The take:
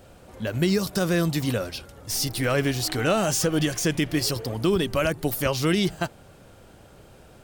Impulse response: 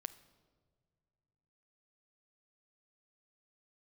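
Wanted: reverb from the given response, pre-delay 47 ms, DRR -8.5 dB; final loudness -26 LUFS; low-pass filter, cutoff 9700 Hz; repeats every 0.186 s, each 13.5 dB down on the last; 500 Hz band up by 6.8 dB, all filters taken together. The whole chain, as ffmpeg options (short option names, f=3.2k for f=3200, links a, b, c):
-filter_complex "[0:a]lowpass=9.7k,equalizer=f=500:t=o:g=8.5,aecho=1:1:186|372:0.211|0.0444,asplit=2[a][b];[1:a]atrim=start_sample=2205,adelay=47[c];[b][c]afir=irnorm=-1:irlink=0,volume=12dB[d];[a][d]amix=inputs=2:normalize=0,volume=-14dB"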